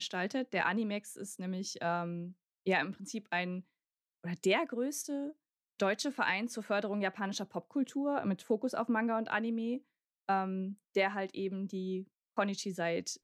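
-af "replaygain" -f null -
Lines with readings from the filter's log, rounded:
track_gain = +15.1 dB
track_peak = 0.107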